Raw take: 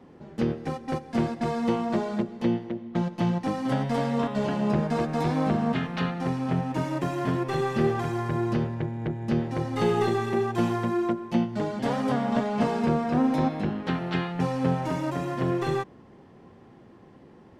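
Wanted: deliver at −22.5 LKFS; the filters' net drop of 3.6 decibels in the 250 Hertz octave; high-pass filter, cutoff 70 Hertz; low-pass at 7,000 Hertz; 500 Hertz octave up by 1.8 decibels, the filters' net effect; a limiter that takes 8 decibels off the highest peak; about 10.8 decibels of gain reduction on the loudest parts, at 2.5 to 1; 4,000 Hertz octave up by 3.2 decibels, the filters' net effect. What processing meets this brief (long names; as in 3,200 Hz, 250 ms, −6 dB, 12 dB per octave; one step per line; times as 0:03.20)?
high-pass filter 70 Hz
low-pass filter 7,000 Hz
parametric band 250 Hz −6 dB
parametric band 500 Hz +4.5 dB
parametric band 4,000 Hz +4.5 dB
downward compressor 2.5 to 1, threshold −37 dBFS
level +16 dB
brickwall limiter −12.5 dBFS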